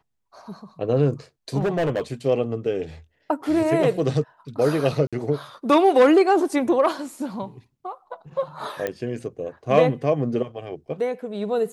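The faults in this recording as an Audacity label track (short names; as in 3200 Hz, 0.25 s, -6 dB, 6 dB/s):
1.590000	2.010000	clipped -19 dBFS
5.070000	5.130000	gap 56 ms
8.870000	8.870000	pop -13 dBFS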